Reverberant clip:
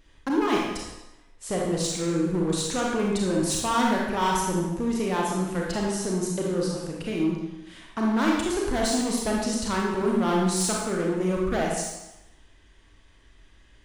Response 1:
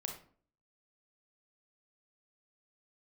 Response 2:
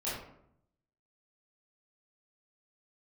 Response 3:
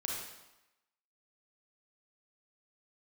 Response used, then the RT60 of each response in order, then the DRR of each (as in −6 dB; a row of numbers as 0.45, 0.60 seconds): 3; 0.50, 0.70, 0.95 seconds; 2.0, −10.5, −2.5 decibels